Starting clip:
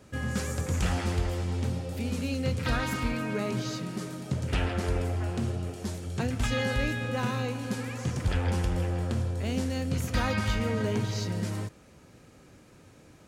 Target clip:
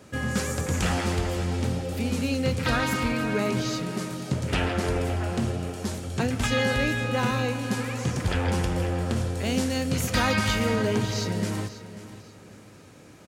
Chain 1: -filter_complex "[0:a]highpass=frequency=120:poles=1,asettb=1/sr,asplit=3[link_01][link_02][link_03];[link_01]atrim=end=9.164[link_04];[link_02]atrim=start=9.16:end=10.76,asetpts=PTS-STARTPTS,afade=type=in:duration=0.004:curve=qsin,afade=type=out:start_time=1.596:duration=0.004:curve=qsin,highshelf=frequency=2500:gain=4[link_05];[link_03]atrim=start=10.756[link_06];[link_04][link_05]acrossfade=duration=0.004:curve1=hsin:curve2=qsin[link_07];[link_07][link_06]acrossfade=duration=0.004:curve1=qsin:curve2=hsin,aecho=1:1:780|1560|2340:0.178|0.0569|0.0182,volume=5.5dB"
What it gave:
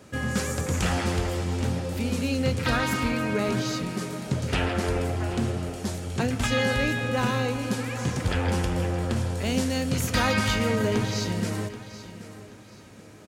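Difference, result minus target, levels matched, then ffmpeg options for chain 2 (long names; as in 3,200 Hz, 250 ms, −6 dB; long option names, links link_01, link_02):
echo 240 ms late
-filter_complex "[0:a]highpass=frequency=120:poles=1,asettb=1/sr,asplit=3[link_01][link_02][link_03];[link_01]atrim=end=9.164[link_04];[link_02]atrim=start=9.16:end=10.76,asetpts=PTS-STARTPTS,afade=type=in:duration=0.004:curve=qsin,afade=type=out:start_time=1.596:duration=0.004:curve=qsin,highshelf=frequency=2500:gain=4[link_05];[link_03]atrim=start=10.756[link_06];[link_04][link_05]acrossfade=duration=0.004:curve1=hsin:curve2=qsin[link_07];[link_07][link_06]acrossfade=duration=0.004:curve1=qsin:curve2=hsin,aecho=1:1:540|1080|1620:0.178|0.0569|0.0182,volume=5.5dB"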